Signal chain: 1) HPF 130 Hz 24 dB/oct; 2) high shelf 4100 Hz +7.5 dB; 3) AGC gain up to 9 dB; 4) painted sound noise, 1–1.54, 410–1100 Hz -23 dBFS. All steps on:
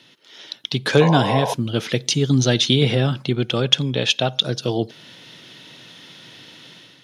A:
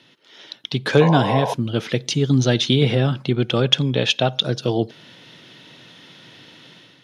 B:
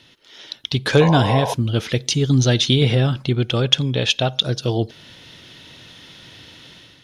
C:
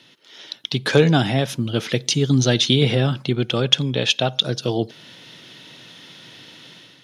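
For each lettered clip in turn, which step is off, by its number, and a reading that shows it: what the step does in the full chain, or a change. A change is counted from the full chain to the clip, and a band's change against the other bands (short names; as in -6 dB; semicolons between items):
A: 2, 8 kHz band -5.0 dB; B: 1, 125 Hz band +3.0 dB; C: 4, 1 kHz band -4.0 dB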